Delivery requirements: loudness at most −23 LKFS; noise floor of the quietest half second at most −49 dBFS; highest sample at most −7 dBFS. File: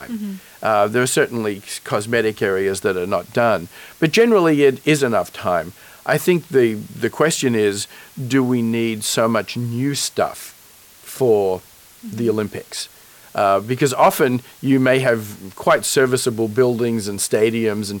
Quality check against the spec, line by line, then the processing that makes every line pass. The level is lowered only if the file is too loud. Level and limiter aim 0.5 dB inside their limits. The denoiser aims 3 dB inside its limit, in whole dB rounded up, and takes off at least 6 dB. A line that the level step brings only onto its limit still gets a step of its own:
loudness −18.5 LKFS: out of spec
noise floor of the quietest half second −46 dBFS: out of spec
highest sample −4.5 dBFS: out of spec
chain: level −5 dB

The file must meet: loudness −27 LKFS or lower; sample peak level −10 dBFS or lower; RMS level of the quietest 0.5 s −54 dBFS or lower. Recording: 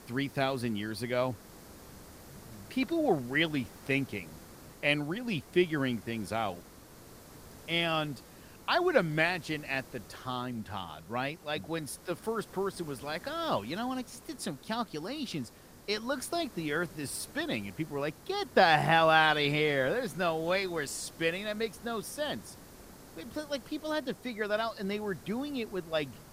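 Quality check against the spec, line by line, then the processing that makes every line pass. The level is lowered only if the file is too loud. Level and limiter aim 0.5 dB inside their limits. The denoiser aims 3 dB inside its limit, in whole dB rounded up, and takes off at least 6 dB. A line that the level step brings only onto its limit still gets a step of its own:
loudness −32.0 LKFS: in spec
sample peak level −11.0 dBFS: in spec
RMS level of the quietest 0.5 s −52 dBFS: out of spec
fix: broadband denoise 6 dB, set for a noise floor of −52 dBFS

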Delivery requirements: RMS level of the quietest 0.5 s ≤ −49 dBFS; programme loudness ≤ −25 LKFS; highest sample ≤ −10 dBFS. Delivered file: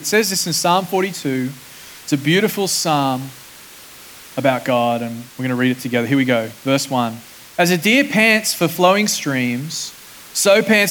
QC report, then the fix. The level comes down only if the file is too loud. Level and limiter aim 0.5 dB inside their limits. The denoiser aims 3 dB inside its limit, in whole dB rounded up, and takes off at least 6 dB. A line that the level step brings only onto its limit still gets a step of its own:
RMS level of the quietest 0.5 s −40 dBFS: out of spec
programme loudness −17.0 LKFS: out of spec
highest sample −2.0 dBFS: out of spec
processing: broadband denoise 6 dB, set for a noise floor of −40 dBFS
level −8.5 dB

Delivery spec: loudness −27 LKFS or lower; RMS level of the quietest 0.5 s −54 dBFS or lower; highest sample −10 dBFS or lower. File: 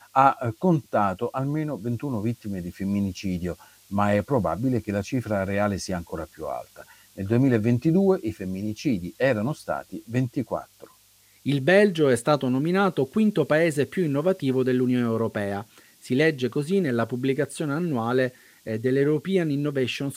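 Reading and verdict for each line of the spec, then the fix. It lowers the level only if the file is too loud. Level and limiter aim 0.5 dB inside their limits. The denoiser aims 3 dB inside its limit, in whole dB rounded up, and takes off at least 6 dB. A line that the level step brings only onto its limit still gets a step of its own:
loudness −24.5 LKFS: out of spec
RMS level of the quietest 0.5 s −58 dBFS: in spec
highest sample −5.5 dBFS: out of spec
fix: level −3 dB
brickwall limiter −10.5 dBFS

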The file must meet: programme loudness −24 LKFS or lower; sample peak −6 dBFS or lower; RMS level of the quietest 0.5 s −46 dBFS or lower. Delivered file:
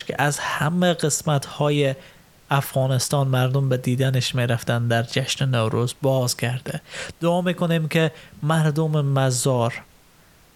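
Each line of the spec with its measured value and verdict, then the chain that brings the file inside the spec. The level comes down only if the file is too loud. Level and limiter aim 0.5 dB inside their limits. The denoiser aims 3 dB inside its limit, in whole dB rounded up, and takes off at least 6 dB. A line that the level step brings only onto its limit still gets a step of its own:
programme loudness −22.0 LKFS: out of spec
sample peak −4.0 dBFS: out of spec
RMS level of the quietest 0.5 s −53 dBFS: in spec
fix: level −2.5 dB

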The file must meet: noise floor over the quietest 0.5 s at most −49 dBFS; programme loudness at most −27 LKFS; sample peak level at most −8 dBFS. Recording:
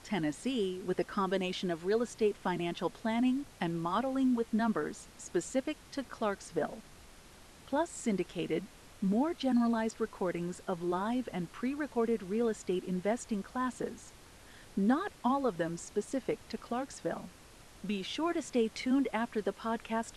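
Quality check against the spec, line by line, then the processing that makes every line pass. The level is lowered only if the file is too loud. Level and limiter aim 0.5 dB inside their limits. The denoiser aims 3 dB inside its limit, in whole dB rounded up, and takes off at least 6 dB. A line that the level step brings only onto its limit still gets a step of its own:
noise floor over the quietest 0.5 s −55 dBFS: in spec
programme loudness −34.0 LKFS: in spec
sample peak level −18.0 dBFS: in spec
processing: no processing needed

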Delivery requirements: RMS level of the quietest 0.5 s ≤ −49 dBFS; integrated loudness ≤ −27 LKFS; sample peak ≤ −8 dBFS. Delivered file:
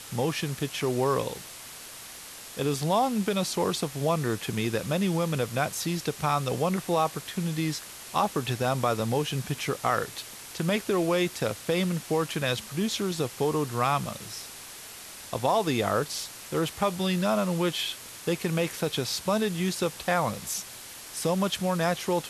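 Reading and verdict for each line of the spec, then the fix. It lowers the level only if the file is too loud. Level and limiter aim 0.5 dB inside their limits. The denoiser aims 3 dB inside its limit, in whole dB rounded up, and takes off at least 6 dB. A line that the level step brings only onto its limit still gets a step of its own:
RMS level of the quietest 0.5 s −44 dBFS: out of spec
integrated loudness −28.0 LKFS: in spec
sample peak −10.0 dBFS: in spec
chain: broadband denoise 8 dB, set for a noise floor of −44 dBFS

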